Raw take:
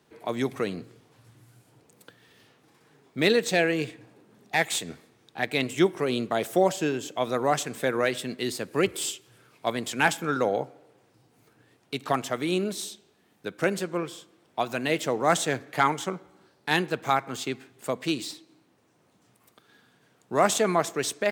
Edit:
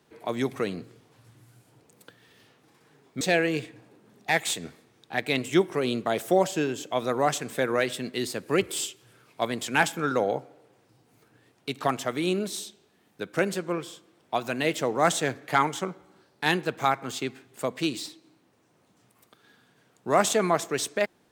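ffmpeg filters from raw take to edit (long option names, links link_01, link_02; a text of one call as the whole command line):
ffmpeg -i in.wav -filter_complex "[0:a]asplit=2[link_01][link_02];[link_01]atrim=end=3.212[link_03];[link_02]atrim=start=3.458[link_04];[link_03][link_04]acrossfade=duration=0.004:curve1=hsin:curve2=hsin" out.wav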